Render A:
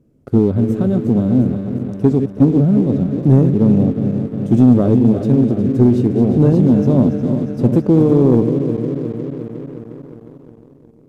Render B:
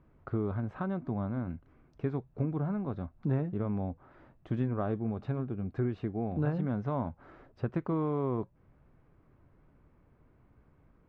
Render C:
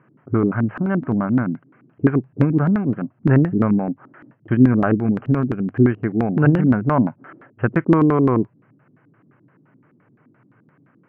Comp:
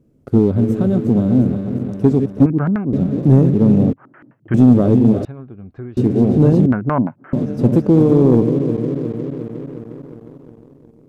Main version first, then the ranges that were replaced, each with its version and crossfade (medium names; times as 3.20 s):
A
2.46–2.93 s: from C
3.93–4.54 s: from C
5.25–5.97 s: from B
6.66–7.33 s: from C